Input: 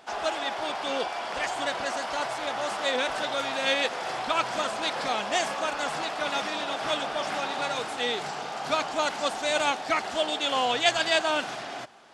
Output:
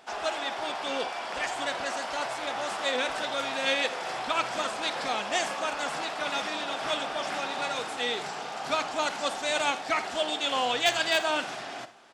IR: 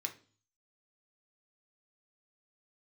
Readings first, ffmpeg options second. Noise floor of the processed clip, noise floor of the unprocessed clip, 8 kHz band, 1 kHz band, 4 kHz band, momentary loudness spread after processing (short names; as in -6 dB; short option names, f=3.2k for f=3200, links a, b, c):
-38 dBFS, -37 dBFS, -0.5 dB, -2.0 dB, -1.0 dB, 6 LU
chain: -filter_complex "[0:a]aeval=exprs='0.282*(abs(mod(val(0)/0.282+3,4)-2)-1)':c=same,aecho=1:1:52|79:0.15|0.126,asplit=2[a][b];[1:a]atrim=start_sample=2205[c];[b][c]afir=irnorm=-1:irlink=0,volume=-10.5dB[d];[a][d]amix=inputs=2:normalize=0,volume=-3dB"